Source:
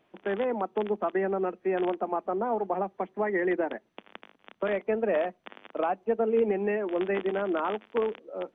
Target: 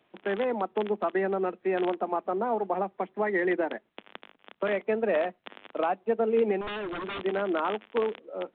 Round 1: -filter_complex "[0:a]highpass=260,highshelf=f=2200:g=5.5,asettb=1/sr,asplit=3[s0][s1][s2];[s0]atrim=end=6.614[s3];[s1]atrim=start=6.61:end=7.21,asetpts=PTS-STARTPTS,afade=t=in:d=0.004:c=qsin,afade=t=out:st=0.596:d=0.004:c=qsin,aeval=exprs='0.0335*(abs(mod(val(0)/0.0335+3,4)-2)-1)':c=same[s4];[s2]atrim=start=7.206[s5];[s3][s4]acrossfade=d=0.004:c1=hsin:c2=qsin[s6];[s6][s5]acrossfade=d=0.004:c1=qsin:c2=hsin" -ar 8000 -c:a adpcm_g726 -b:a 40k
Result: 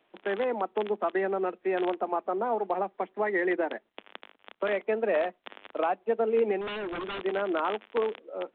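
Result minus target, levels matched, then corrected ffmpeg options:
125 Hz band -5.0 dB
-filter_complex "[0:a]highpass=85,highshelf=f=2200:g=5.5,asettb=1/sr,asplit=3[s0][s1][s2];[s0]atrim=end=6.614[s3];[s1]atrim=start=6.61:end=7.21,asetpts=PTS-STARTPTS,afade=t=in:d=0.004:c=qsin,afade=t=out:st=0.596:d=0.004:c=qsin,aeval=exprs='0.0335*(abs(mod(val(0)/0.0335+3,4)-2)-1)':c=same[s4];[s2]atrim=start=7.206[s5];[s3][s4]acrossfade=d=0.004:c1=hsin:c2=qsin[s6];[s6][s5]acrossfade=d=0.004:c1=qsin:c2=hsin" -ar 8000 -c:a adpcm_g726 -b:a 40k

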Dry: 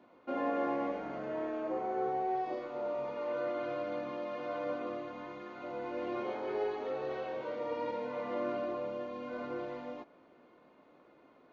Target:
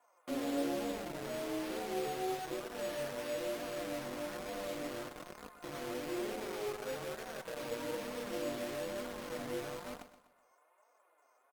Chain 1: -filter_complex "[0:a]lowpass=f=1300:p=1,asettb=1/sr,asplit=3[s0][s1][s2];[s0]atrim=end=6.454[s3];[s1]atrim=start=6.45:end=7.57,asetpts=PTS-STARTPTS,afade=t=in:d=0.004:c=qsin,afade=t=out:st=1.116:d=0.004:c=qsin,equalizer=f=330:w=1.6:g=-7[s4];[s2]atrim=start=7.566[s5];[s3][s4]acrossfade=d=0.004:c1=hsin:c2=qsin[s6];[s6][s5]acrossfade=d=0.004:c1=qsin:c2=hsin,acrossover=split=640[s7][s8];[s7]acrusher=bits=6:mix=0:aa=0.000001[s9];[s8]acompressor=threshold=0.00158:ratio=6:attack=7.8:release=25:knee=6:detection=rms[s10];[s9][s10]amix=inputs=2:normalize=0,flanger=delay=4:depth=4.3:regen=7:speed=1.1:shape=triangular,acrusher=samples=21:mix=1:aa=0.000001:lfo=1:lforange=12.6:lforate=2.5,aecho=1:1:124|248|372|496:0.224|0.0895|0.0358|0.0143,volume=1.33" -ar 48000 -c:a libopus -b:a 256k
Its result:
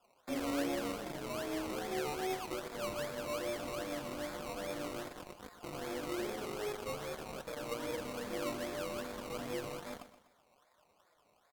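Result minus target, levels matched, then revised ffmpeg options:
decimation with a swept rate: distortion +10 dB
-filter_complex "[0:a]lowpass=f=1300:p=1,asettb=1/sr,asplit=3[s0][s1][s2];[s0]atrim=end=6.454[s3];[s1]atrim=start=6.45:end=7.57,asetpts=PTS-STARTPTS,afade=t=in:d=0.004:c=qsin,afade=t=out:st=1.116:d=0.004:c=qsin,equalizer=f=330:w=1.6:g=-7[s4];[s2]atrim=start=7.566[s5];[s3][s4]acrossfade=d=0.004:c1=hsin:c2=qsin[s6];[s6][s5]acrossfade=d=0.004:c1=qsin:c2=hsin,acrossover=split=640[s7][s8];[s7]acrusher=bits=6:mix=0:aa=0.000001[s9];[s8]acompressor=threshold=0.00158:ratio=6:attack=7.8:release=25:knee=6:detection=rms[s10];[s9][s10]amix=inputs=2:normalize=0,flanger=delay=4:depth=4.3:regen=7:speed=1.1:shape=triangular,acrusher=samples=5:mix=1:aa=0.000001:lfo=1:lforange=3:lforate=2.5,aecho=1:1:124|248|372|496:0.224|0.0895|0.0358|0.0143,volume=1.33" -ar 48000 -c:a libopus -b:a 256k

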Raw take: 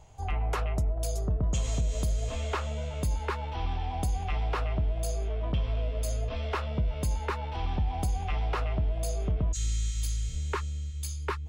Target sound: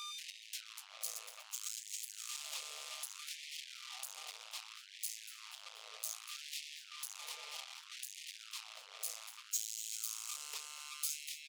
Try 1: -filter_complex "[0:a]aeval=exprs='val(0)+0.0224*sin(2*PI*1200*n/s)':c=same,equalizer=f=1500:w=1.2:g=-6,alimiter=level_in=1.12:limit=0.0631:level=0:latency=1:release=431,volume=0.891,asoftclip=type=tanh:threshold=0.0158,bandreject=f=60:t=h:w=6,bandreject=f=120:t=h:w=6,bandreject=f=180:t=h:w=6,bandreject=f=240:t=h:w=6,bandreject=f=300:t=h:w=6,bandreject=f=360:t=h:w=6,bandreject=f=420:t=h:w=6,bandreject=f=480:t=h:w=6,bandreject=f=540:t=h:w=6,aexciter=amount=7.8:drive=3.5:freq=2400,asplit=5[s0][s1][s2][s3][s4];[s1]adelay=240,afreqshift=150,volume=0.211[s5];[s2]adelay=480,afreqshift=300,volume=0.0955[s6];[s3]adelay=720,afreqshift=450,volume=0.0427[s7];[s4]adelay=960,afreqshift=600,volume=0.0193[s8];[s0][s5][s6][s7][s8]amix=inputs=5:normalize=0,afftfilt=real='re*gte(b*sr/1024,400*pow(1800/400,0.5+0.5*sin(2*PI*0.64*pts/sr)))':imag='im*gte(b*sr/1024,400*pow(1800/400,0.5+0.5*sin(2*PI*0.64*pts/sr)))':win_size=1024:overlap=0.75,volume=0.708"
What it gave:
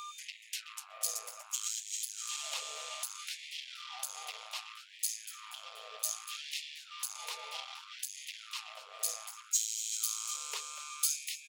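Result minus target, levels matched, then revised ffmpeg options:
saturation: distortion -5 dB
-filter_complex "[0:a]aeval=exprs='val(0)+0.0224*sin(2*PI*1200*n/s)':c=same,equalizer=f=1500:w=1.2:g=-6,alimiter=level_in=1.12:limit=0.0631:level=0:latency=1:release=431,volume=0.891,asoftclip=type=tanh:threshold=0.00447,bandreject=f=60:t=h:w=6,bandreject=f=120:t=h:w=6,bandreject=f=180:t=h:w=6,bandreject=f=240:t=h:w=6,bandreject=f=300:t=h:w=6,bandreject=f=360:t=h:w=6,bandreject=f=420:t=h:w=6,bandreject=f=480:t=h:w=6,bandreject=f=540:t=h:w=6,aexciter=amount=7.8:drive=3.5:freq=2400,asplit=5[s0][s1][s2][s3][s4];[s1]adelay=240,afreqshift=150,volume=0.211[s5];[s2]adelay=480,afreqshift=300,volume=0.0955[s6];[s3]adelay=720,afreqshift=450,volume=0.0427[s7];[s4]adelay=960,afreqshift=600,volume=0.0193[s8];[s0][s5][s6][s7][s8]amix=inputs=5:normalize=0,afftfilt=real='re*gte(b*sr/1024,400*pow(1800/400,0.5+0.5*sin(2*PI*0.64*pts/sr)))':imag='im*gte(b*sr/1024,400*pow(1800/400,0.5+0.5*sin(2*PI*0.64*pts/sr)))':win_size=1024:overlap=0.75,volume=0.708"

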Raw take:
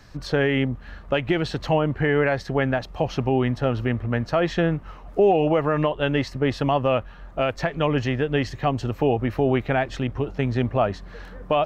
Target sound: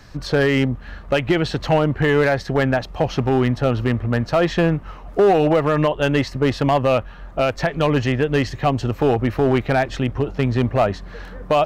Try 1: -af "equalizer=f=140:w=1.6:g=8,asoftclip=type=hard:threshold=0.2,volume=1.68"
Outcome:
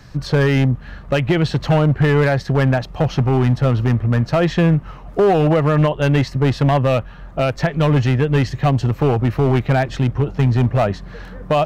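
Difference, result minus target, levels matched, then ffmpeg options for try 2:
125 Hz band +4.5 dB
-af "asoftclip=type=hard:threshold=0.2,volume=1.68"

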